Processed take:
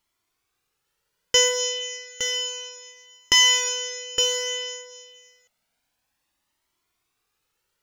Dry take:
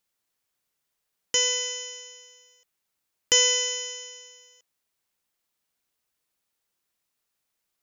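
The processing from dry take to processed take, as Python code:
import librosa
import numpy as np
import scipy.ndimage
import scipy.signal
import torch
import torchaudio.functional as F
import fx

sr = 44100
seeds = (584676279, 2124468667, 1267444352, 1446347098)

p1 = fx.high_shelf(x, sr, hz=5700.0, db=-8.5)
p2 = 10.0 ** (-25.5 / 20.0) * np.tanh(p1 / 10.0 ** (-25.5 / 20.0))
p3 = p1 + F.gain(torch.from_numpy(p2), -6.0).numpy()
p4 = p3 + 10.0 ** (-6.5 / 20.0) * np.pad(p3, (int(864 * sr / 1000.0), 0))[:len(p3)]
p5 = fx.comb_cascade(p4, sr, direction='rising', hz=0.3)
y = F.gain(torch.from_numpy(p5), 8.5).numpy()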